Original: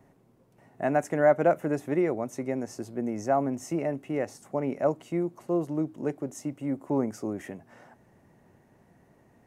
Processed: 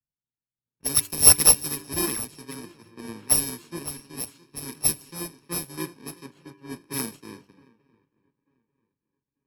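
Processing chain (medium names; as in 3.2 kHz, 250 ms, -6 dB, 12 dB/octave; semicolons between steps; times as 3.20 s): bit-reversed sample order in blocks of 64 samples; treble shelf 2.7 kHz +8.5 dB; de-hum 98.42 Hz, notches 31; on a send: shuffle delay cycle 891 ms, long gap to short 3:1, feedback 48%, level -14 dB; on the sum: level-controlled noise filter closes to 2.3 kHz, open at -16.5 dBFS; peaking EQ 1.1 kHz -2.5 dB 2.2 oct; in parallel at -11 dB: decimation with a swept rate 20×, swing 160% 2.7 Hz; on the sum: three bands expanded up and down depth 100%; trim -6.5 dB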